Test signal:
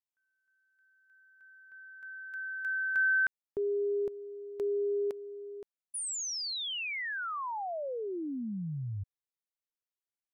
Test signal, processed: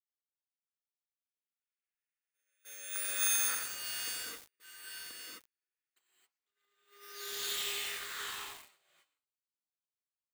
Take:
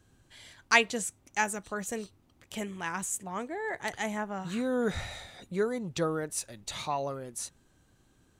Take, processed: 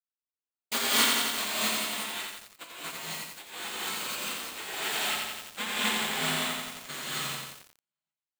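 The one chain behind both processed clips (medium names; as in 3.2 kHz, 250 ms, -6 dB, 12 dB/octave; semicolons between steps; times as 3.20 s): square wave that keeps the level; echo that smears into a reverb 785 ms, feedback 60%, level -11 dB; band noise 1.4–2.8 kHz -57 dBFS; cabinet simulation 420–4800 Hz, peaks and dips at 630 Hz -7 dB, 930 Hz -4 dB, 1.8 kHz +4 dB, 3.5 kHz +8 dB; in parallel at -1 dB: compression 12:1, threshold -40 dBFS; on the sum: sample-and-hold 4×; spectral gate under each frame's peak -15 dB weak; gate -37 dBFS, range -56 dB; treble shelf 3.5 kHz -7 dB; gated-style reverb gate 290 ms rising, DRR -8 dB; bit-crushed delay 87 ms, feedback 80%, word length 7-bit, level -3 dB; trim -2 dB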